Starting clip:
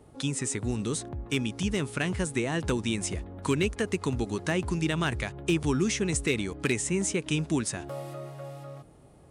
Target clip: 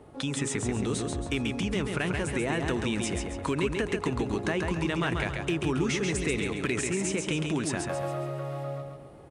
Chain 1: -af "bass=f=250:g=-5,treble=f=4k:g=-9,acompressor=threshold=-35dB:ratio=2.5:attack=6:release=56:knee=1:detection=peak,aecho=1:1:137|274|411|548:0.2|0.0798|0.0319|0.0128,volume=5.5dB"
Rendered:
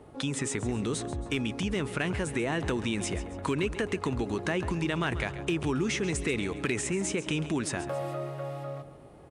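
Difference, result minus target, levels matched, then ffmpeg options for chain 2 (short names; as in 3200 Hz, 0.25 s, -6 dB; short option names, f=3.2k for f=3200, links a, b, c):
echo-to-direct -9.5 dB
-af "bass=f=250:g=-5,treble=f=4k:g=-9,acompressor=threshold=-35dB:ratio=2.5:attack=6:release=56:knee=1:detection=peak,aecho=1:1:137|274|411|548|685:0.596|0.238|0.0953|0.0381|0.0152,volume=5.5dB"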